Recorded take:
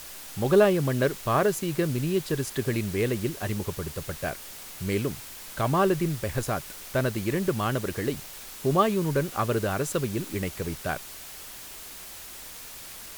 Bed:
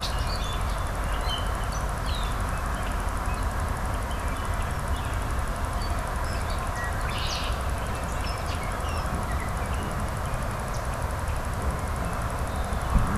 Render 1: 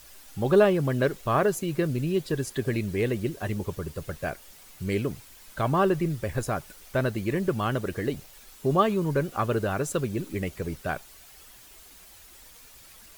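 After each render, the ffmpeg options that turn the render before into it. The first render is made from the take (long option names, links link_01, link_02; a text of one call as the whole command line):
ffmpeg -i in.wav -af "afftdn=noise_reduction=10:noise_floor=-42" out.wav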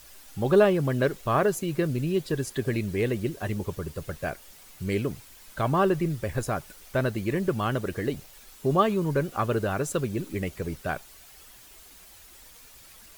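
ffmpeg -i in.wav -af anull out.wav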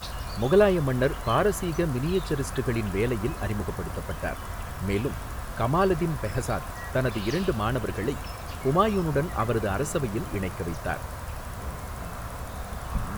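ffmpeg -i in.wav -i bed.wav -filter_complex "[1:a]volume=-7dB[link_01];[0:a][link_01]amix=inputs=2:normalize=0" out.wav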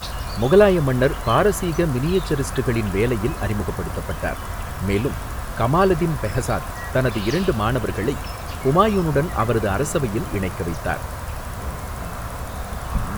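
ffmpeg -i in.wav -af "volume=6dB" out.wav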